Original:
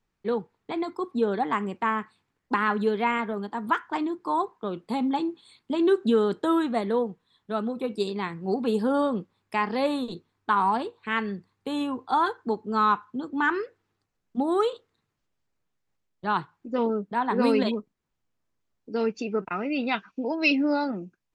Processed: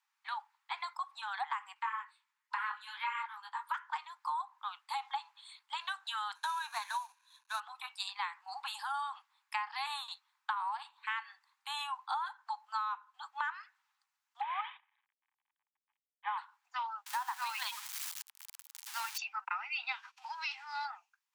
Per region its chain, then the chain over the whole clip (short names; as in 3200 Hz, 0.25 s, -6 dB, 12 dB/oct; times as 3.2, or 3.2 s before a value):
1.74–3.74 elliptic high-pass 900 Hz + doubler 12 ms -11 dB + detuned doubles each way 23 cents
6.35–7.6 CVSD 64 kbps + ripple EQ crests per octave 1.5, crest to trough 10 dB
14.41–16.38 CVSD 16 kbps + notch comb 1400 Hz
17.06–19.18 switching spikes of -24.5 dBFS + high shelf 7400 Hz -7.5 dB
19.91–20.84 spectral whitening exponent 0.6 + compressor 4:1, threshold -32 dBFS + air absorption 50 m
whole clip: steep high-pass 810 Hz 96 dB/oct; compressor 16:1, threshold -34 dBFS; gain +1 dB